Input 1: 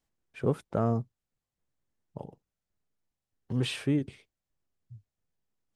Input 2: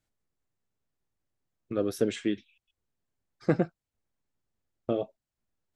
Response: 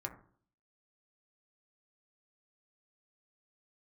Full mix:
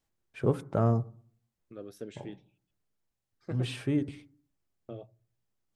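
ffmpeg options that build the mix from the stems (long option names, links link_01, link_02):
-filter_complex "[0:a]volume=-2dB,asplit=2[link_01][link_02];[link_02]volume=-6.5dB[link_03];[1:a]volume=-16dB,asplit=3[link_04][link_05][link_06];[link_05]volume=-16.5dB[link_07];[link_06]apad=whole_len=253966[link_08];[link_01][link_08]sidechaincompress=threshold=-48dB:ratio=8:attack=40:release=434[link_09];[2:a]atrim=start_sample=2205[link_10];[link_03][link_07]amix=inputs=2:normalize=0[link_11];[link_11][link_10]afir=irnorm=-1:irlink=0[link_12];[link_09][link_04][link_12]amix=inputs=3:normalize=0"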